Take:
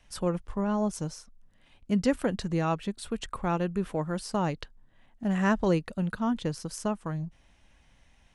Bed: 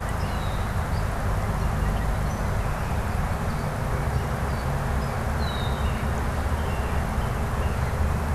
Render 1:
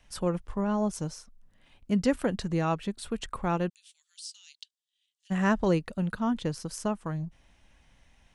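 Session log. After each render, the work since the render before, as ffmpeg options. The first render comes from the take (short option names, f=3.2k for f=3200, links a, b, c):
-filter_complex "[0:a]asplit=3[a][b][c];[a]afade=t=out:st=3.68:d=0.02[d];[b]asuperpass=centerf=5600:order=8:qfactor=0.88,afade=t=in:st=3.68:d=0.02,afade=t=out:st=5.3:d=0.02[e];[c]afade=t=in:st=5.3:d=0.02[f];[d][e][f]amix=inputs=3:normalize=0"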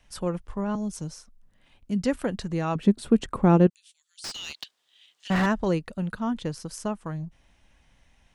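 -filter_complex "[0:a]asettb=1/sr,asplit=3[a][b][c];[a]atrim=end=0.754[d];[b]atrim=start=0.75:end=2.04,asetpts=PTS-STARTPTS,afade=t=in:d=0.004:c=qsin,afade=t=out:st=1.286:d=0.004:c=qsin,acrossover=split=350|3000[e][f][g];[f]acompressor=threshold=-47dB:ratio=3:attack=3.2:release=140:knee=2.83:detection=peak[h];[e][h][g]amix=inputs=3:normalize=0[i];[c]atrim=start=2.036[j];[d][i]acrossfade=d=0.004:c1=hsin:c2=qsin[k];[k][j]acrossfade=d=0.004:c1=qsin:c2=hsin,asettb=1/sr,asplit=3[l][m][n];[l]atrim=end=2.754[o];[m]atrim=start=2.75:end=3.67,asetpts=PTS-STARTPTS,afade=t=in:d=0.004:c=qsin,afade=t=out:st=0.916:d=0.004:c=qsin,equalizer=f=250:w=0.46:g=14.5[p];[n]atrim=start=3.666[q];[o][p]acrossfade=d=0.004:c1=hsin:c2=qsin[r];[r][q]acrossfade=d=0.004:c1=qsin:c2=hsin,asettb=1/sr,asplit=3[s][t][u];[s]atrim=end=4.244[v];[t]atrim=start=4.24:end=5.46,asetpts=PTS-STARTPTS,afade=t=in:d=0.004:c=qsin,afade=t=out:st=1.216:d=0.004:c=qsin,asplit=2[w][x];[x]highpass=f=720:p=1,volume=36dB,asoftclip=type=tanh:threshold=-14.5dB[y];[w][y]amix=inputs=2:normalize=0,lowpass=f=1.2k:p=1,volume=-6dB[z];[u]atrim=start=5.456[aa];[v][z]acrossfade=d=0.004:c1=hsin:c2=qsin[ab];[ab][aa]acrossfade=d=0.004:c1=qsin:c2=hsin"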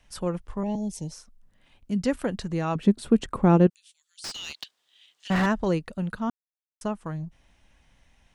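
-filter_complex "[0:a]asettb=1/sr,asplit=3[a][b][c];[a]atrim=end=0.634[d];[b]atrim=start=0.63:end=1.12,asetpts=PTS-STARTPTS,afade=t=in:d=0.004:c=qsin,afade=t=out:st=0.486:d=0.004:c=qsin,asuperstop=centerf=1300:order=12:qfactor=1.6[e];[c]atrim=start=1.116[f];[d][e]acrossfade=d=0.004:c1=hsin:c2=qsin[g];[g][f]acrossfade=d=0.004:c1=qsin:c2=hsin,asplit=3[h][i][j];[h]atrim=end=6.3,asetpts=PTS-STARTPTS,afade=t=out:st=6.296:d=0.004:c=hsin[k];[i]atrim=start=6.3:end=6.81,asetpts=PTS-STARTPTS,volume=0[l];[j]atrim=start=6.81,asetpts=PTS-STARTPTS,afade=t=in:d=0.004:c=hsin[m];[k][l][m]concat=n=3:v=0:a=1"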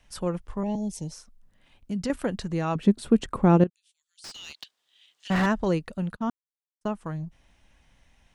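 -filter_complex "[0:a]asettb=1/sr,asplit=3[a][b][c];[a]atrim=end=1.004[d];[b]atrim=start=1:end=2.1,asetpts=PTS-STARTPTS,afade=t=in:d=0.004:c=qsin,afade=t=out:st=1.096:d=0.004:c=qsin,acompressor=threshold=-27dB:ratio=2.5:attack=3.2:release=140:knee=1:detection=peak[e];[c]atrim=start=2.096[f];[d][e]acrossfade=d=0.004:c1=hsin:c2=qsin[g];[g][f]acrossfade=d=0.004:c1=qsin:c2=hsin,asettb=1/sr,asplit=3[h][i][j];[h]atrim=end=6.134[k];[i]atrim=start=6.13:end=6.86,asetpts=PTS-STARTPTS,afade=t=in:d=0.004:c=qsin,afade=t=out:st=0.726:d=0.004:c=qsin,agate=range=-34dB:threshold=-36dB:ratio=16:release=100:detection=peak[l];[j]atrim=start=6.856[m];[k][l]acrossfade=d=0.004:c1=hsin:c2=qsin[n];[n][m]acrossfade=d=0.004:c1=qsin:c2=hsin,asplit=2[o][p];[o]atrim=end=3.64,asetpts=PTS-STARTPTS,afade=t=out:st=3.636:d=0.004:c=hsin:silence=0.211349[q];[p]atrim=start=3.64,asetpts=PTS-STARTPTS,afade=t=in:d=1.82:silence=0.211349[r];[q][r]concat=n=2:v=0:a=1"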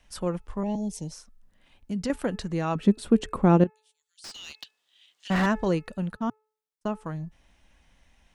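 -af "equalizer=f=120:w=6.3:g=-12,bandreject=f=432.4:t=h:w=4,bandreject=f=864.8:t=h:w=4,bandreject=f=1.2972k:t=h:w=4,bandreject=f=1.7296k:t=h:w=4,bandreject=f=2.162k:t=h:w=4,bandreject=f=2.5944k:t=h:w=4"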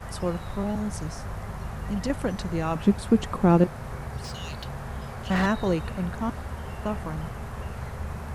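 -filter_complex "[1:a]volume=-9.5dB[a];[0:a][a]amix=inputs=2:normalize=0"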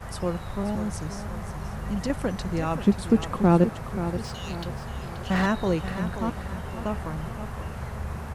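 -af "aecho=1:1:530|1060|1590|2120|2650:0.282|0.124|0.0546|0.024|0.0106"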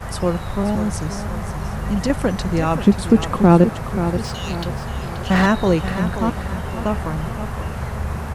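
-af "volume=8dB,alimiter=limit=-2dB:level=0:latency=1"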